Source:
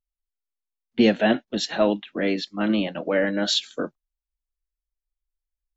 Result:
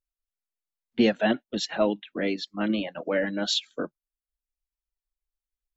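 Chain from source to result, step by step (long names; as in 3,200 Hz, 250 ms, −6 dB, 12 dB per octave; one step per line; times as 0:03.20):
reverb reduction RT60 0.67 s
level −3 dB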